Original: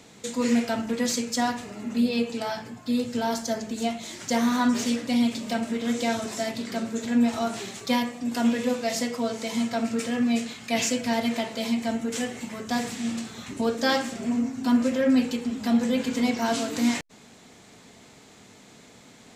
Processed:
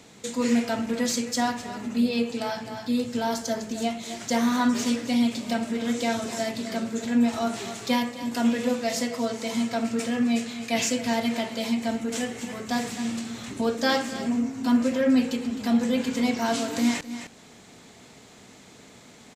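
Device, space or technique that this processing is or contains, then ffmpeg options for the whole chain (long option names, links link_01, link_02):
ducked delay: -filter_complex "[0:a]asplit=3[link_01][link_02][link_03];[link_02]adelay=260,volume=-5dB[link_04];[link_03]apad=whole_len=864851[link_05];[link_04][link_05]sidechaincompress=threshold=-35dB:ratio=5:attack=16:release=412[link_06];[link_01][link_06]amix=inputs=2:normalize=0"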